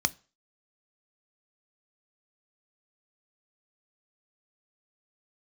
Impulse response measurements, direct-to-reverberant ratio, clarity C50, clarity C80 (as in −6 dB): 13.0 dB, 24.5 dB, 29.5 dB